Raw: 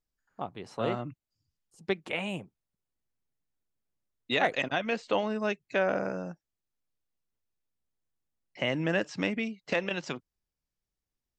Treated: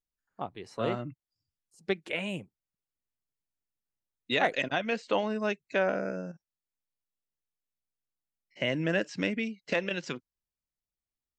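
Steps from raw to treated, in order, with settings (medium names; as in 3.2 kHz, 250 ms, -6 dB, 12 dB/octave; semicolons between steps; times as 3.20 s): 5.90–8.61 s: spectrogram pixelated in time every 50 ms; spectral noise reduction 8 dB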